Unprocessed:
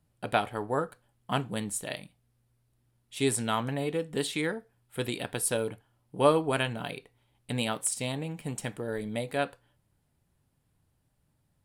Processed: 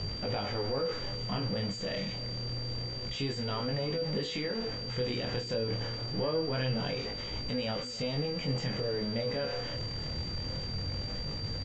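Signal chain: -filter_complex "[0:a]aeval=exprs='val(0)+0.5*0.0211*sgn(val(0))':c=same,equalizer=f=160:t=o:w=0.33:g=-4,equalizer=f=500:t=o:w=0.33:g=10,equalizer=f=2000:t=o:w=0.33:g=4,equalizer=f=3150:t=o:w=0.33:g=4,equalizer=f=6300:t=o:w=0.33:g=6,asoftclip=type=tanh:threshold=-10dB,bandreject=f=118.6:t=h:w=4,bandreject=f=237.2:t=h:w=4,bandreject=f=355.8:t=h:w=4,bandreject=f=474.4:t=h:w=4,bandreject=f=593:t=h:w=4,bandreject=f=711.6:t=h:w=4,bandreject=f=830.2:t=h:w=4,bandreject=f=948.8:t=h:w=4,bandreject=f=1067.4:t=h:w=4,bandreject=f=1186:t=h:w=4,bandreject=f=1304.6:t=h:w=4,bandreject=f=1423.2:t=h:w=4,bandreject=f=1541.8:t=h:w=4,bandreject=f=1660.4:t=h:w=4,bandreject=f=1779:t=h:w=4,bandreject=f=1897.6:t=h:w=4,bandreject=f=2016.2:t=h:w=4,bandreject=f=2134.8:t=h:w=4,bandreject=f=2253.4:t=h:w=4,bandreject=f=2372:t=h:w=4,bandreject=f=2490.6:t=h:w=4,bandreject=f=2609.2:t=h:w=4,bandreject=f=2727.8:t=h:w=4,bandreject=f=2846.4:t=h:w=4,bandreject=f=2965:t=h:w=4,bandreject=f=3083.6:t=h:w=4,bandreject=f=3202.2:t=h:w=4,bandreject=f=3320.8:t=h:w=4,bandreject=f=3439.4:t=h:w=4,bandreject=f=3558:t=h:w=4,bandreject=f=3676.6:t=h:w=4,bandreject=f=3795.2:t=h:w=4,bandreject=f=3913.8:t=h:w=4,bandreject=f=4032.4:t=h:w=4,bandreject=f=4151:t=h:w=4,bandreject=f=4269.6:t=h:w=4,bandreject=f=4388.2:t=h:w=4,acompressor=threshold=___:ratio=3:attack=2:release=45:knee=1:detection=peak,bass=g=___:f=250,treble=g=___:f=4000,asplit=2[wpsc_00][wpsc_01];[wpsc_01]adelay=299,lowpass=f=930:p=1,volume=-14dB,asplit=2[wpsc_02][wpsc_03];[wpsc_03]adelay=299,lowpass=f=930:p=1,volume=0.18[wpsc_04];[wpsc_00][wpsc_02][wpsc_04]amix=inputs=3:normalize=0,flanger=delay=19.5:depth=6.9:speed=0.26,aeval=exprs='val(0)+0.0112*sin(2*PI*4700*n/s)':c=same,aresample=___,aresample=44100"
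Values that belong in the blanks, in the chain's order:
-31dB, 8, -9, 16000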